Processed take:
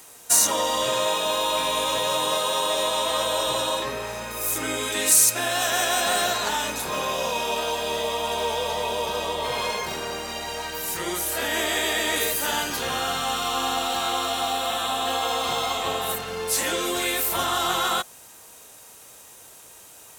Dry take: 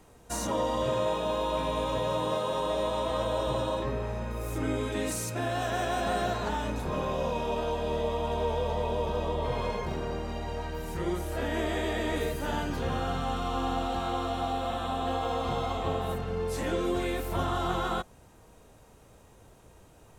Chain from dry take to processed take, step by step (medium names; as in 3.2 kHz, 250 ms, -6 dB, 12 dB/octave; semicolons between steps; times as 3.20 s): tilt EQ +4.5 dB/octave; trim +6.5 dB